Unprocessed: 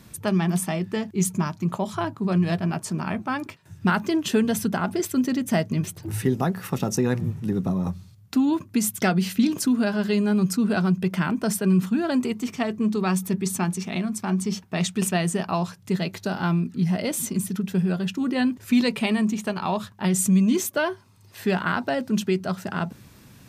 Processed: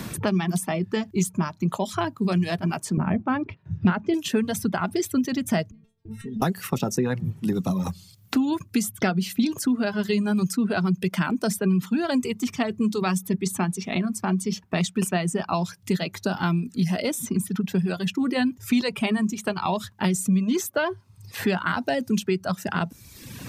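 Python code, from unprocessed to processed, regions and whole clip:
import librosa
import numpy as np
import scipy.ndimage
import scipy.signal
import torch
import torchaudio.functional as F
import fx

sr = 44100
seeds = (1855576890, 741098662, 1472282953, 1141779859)

y = fx.chain(x, sr, fx.lowpass(hz=2400.0, slope=12),
    fx.tilt_eq(slope=-3.0), at=(2.97, 4.14))
y = fx.chain(y, sr, fx.riaa(side='playback'),
    fx.level_steps(step_db=24),
    fx.stiff_resonator(f0_hz=220.0, decay_s=0.3, stiffness=0.002), at=(5.71, 6.42))
y = fx.dereverb_blind(y, sr, rt60_s=0.88)
y = fx.band_squash(y, sr, depth_pct=70)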